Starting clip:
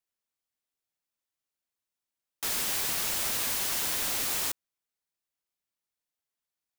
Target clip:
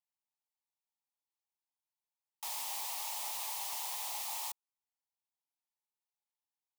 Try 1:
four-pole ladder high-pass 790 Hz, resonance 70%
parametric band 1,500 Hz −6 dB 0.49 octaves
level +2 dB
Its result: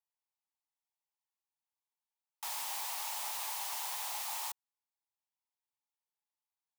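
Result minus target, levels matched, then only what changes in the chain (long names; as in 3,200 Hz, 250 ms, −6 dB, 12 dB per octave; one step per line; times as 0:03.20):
2,000 Hz band +2.5 dB
change: parametric band 1,500 Hz −16 dB 0.49 octaves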